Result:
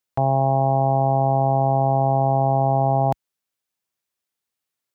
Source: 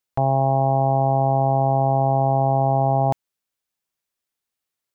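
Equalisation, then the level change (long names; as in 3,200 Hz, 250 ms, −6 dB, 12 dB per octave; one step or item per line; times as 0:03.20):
high-pass filter 56 Hz
0.0 dB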